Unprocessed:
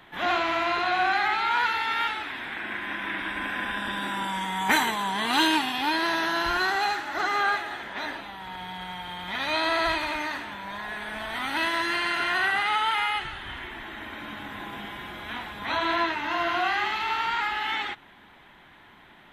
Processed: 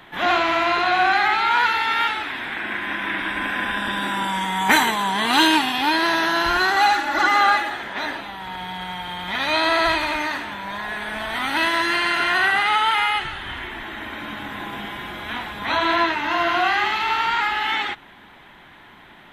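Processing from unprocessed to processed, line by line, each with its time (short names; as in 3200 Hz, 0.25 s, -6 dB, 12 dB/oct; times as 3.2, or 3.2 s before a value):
6.76–7.7 comb 3.5 ms, depth 89%
whole clip: de-hum 47.9 Hz, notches 2; gain +6 dB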